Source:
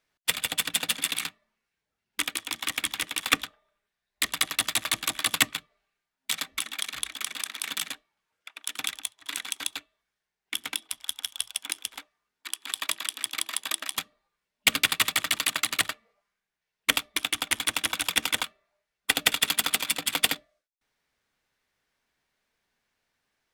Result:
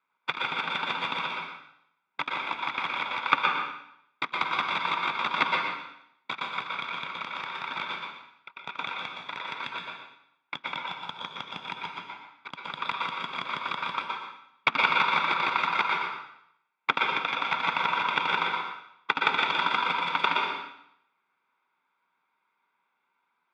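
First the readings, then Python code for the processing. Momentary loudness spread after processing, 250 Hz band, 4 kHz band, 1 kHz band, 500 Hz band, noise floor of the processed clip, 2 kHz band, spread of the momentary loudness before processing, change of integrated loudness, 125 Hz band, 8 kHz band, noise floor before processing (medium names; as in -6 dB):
16 LU, -1.0 dB, -5.5 dB, +10.5 dB, +4.0 dB, -77 dBFS, +1.5 dB, 12 LU, -1.0 dB, +0.5 dB, under -25 dB, under -85 dBFS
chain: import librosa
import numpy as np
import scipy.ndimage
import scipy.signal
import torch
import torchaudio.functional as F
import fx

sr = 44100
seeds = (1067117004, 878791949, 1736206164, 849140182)

p1 = fx.lower_of_two(x, sr, delay_ms=0.83)
p2 = fx.cabinet(p1, sr, low_hz=190.0, low_slope=24, high_hz=3100.0, hz=(210.0, 310.0, 940.0, 1400.0, 3000.0), db=(-7, -4, 10, 6, -3))
p3 = p2 + fx.echo_single(p2, sr, ms=120, db=-7.0, dry=0)
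y = fx.rev_plate(p3, sr, seeds[0], rt60_s=0.73, hf_ratio=0.95, predelay_ms=105, drr_db=0.5)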